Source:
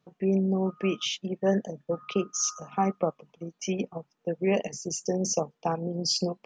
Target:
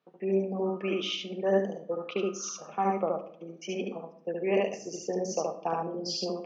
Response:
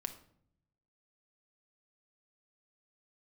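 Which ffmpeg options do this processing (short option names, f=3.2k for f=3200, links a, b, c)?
-filter_complex "[0:a]highpass=300,lowpass=3.9k,asplit=2[a][b];[1:a]atrim=start_sample=2205,adelay=72[c];[b][c]afir=irnorm=-1:irlink=0,volume=0.5dB[d];[a][d]amix=inputs=2:normalize=0,volume=-2.5dB"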